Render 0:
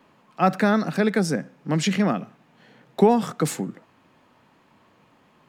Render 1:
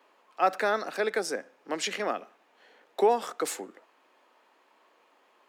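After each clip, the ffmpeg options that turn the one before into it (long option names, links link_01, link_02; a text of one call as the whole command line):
ffmpeg -i in.wav -af "highpass=frequency=370:width=0.5412,highpass=frequency=370:width=1.3066,volume=-3.5dB" out.wav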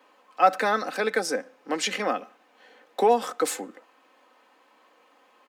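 ffmpeg -i in.wav -af "lowshelf=frequency=110:gain=6,aecho=1:1:3.9:0.52,volume=3dB" out.wav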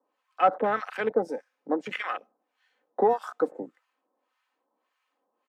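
ffmpeg -i in.wav -filter_complex "[0:a]acrossover=split=1000[link_01][link_02];[link_01]aeval=exprs='val(0)*(1-1/2+1/2*cos(2*PI*1.7*n/s))':channel_layout=same[link_03];[link_02]aeval=exprs='val(0)*(1-1/2-1/2*cos(2*PI*1.7*n/s))':channel_layout=same[link_04];[link_03][link_04]amix=inputs=2:normalize=0,afwtdn=0.02,volume=3dB" out.wav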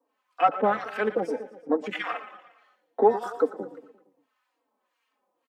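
ffmpeg -i in.wav -filter_complex "[0:a]aecho=1:1:116|232|348|464|580:0.2|0.106|0.056|0.0297|0.0157,asplit=2[link_01][link_02];[link_02]adelay=3.8,afreqshift=-2.4[link_03];[link_01][link_03]amix=inputs=2:normalize=1,volume=4.5dB" out.wav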